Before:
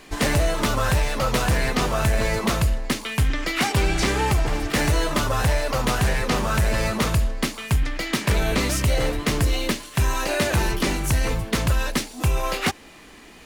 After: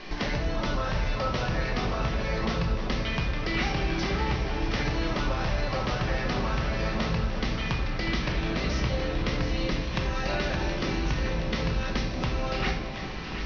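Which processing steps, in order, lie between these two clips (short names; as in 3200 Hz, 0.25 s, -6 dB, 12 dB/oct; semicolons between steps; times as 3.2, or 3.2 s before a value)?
steep low-pass 5900 Hz 96 dB/oct; compressor 4:1, threshold -35 dBFS, peak gain reduction 15.5 dB; echo with dull and thin repeats by turns 0.361 s, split 1100 Hz, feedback 87%, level -8 dB; shoebox room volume 500 m³, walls mixed, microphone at 1 m; gain +3.5 dB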